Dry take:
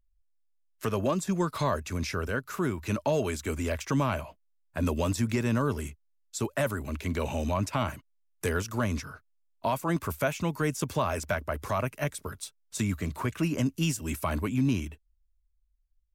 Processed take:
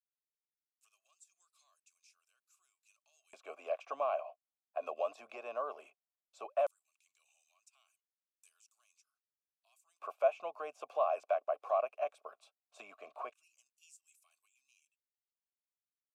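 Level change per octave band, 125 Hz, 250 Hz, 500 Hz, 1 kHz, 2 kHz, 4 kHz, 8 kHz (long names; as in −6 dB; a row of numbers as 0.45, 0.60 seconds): below −40 dB, below −35 dB, −6.0 dB, −7.0 dB, −18.0 dB, below −20 dB, below −25 dB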